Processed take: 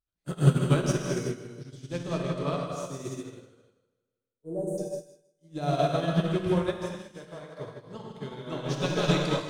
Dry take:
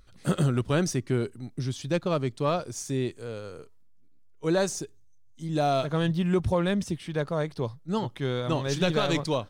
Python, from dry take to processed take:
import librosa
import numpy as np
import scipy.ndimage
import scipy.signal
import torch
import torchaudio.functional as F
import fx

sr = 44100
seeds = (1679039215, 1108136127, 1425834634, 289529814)

y = fx.ellip_bandstop(x, sr, low_hz=660.0, high_hz=9000.0, order=3, stop_db=40, at=(3.58, 4.78))
y = fx.low_shelf(y, sr, hz=260.0, db=-8.0, at=(6.43, 7.6))
y = fx.echo_feedback(y, sr, ms=159, feedback_pct=55, wet_db=-8.5)
y = fx.rev_gated(y, sr, seeds[0], gate_ms=400, shape='flat', drr_db=-3.5)
y = fx.upward_expand(y, sr, threshold_db=-39.0, expansion=2.5)
y = y * librosa.db_to_amplitude(1.0)